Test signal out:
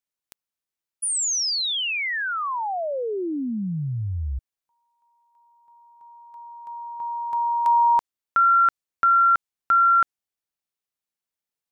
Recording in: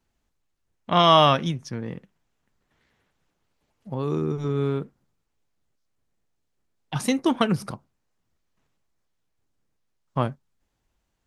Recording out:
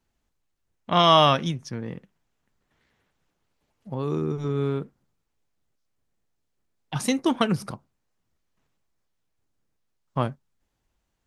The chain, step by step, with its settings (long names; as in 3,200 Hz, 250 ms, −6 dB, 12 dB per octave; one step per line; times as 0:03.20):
dynamic equaliser 6,500 Hz, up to +3 dB, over −39 dBFS, Q 0.71
level −1 dB